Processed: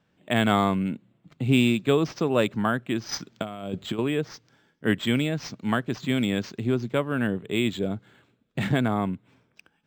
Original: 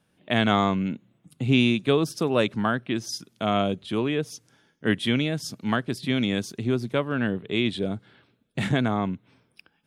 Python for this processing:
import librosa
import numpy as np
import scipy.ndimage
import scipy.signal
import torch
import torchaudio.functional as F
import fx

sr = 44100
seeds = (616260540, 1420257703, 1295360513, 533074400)

y = fx.over_compress(x, sr, threshold_db=-29.0, ratio=-0.5, at=(3.11, 3.99))
y = np.interp(np.arange(len(y)), np.arange(len(y))[::4], y[::4])